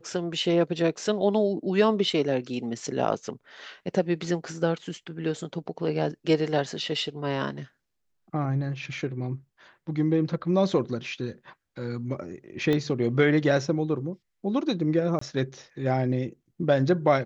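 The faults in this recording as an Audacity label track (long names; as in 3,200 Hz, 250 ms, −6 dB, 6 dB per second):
12.730000	12.730000	click −15 dBFS
15.190000	15.210000	drop-out 24 ms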